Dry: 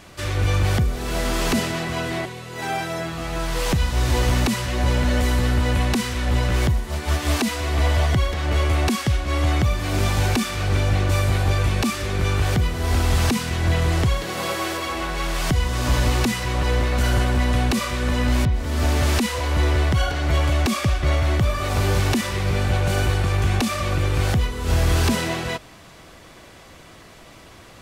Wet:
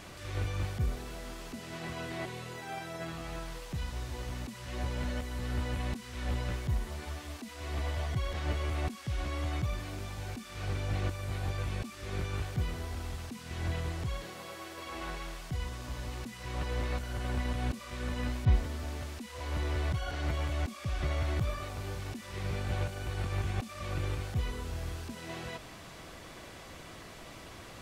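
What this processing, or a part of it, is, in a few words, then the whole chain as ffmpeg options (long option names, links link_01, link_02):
de-esser from a sidechain: -filter_complex "[0:a]asplit=2[link_01][link_02];[link_02]highpass=frequency=5200:width=0.5412,highpass=frequency=5200:width=1.3066,apad=whole_len=1226766[link_03];[link_01][link_03]sidechaincompress=threshold=-50dB:ratio=16:attack=0.86:release=25,volume=-2.5dB"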